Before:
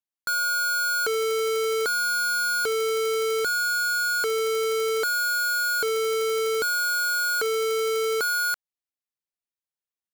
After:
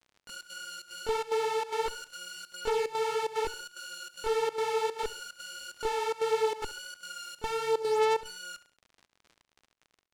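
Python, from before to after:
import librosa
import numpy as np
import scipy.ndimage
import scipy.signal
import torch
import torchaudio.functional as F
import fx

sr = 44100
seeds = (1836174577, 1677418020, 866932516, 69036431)

p1 = fx.peak_eq(x, sr, hz=2100.0, db=-14.0, octaves=2.6)
p2 = fx.cheby_harmonics(p1, sr, harmonics=(2, 3, 8), levels_db=(-8, -11, -25), full_scale_db=-22.0)
p3 = fx.chorus_voices(p2, sr, voices=4, hz=1.4, base_ms=23, depth_ms=3.0, mix_pct=65)
p4 = fx.volume_shaper(p3, sr, bpm=147, per_beat=1, depth_db=-20, release_ms=88.0, shape='slow start')
p5 = fx.dmg_crackle(p4, sr, seeds[0], per_s=66.0, level_db=-48.0)
p6 = fx.air_absorb(p5, sr, metres=60.0)
p7 = p6 + fx.echo_feedback(p6, sr, ms=68, feedback_pct=38, wet_db=-18.0, dry=0)
y = p7 * librosa.db_to_amplitude(5.5)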